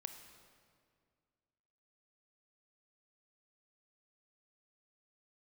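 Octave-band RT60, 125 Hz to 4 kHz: 2.4, 2.4, 2.2, 2.0, 1.8, 1.5 seconds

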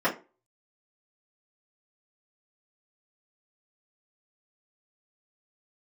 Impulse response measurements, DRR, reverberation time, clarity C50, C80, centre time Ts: −10.0 dB, 0.30 s, 12.5 dB, 19.5 dB, 16 ms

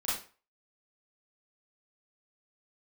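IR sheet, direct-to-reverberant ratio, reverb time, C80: −10.0 dB, 0.40 s, 9.0 dB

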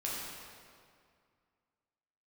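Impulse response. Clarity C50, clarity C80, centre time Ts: −1.5 dB, 0.0 dB, 126 ms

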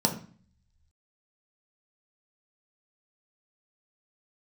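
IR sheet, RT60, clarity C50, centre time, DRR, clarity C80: 0.45 s, 10.0 dB, 14 ms, 1.5 dB, 14.5 dB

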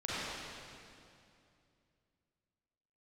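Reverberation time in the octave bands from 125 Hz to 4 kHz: 3.3, 3.0, 2.7, 2.4, 2.3, 2.2 seconds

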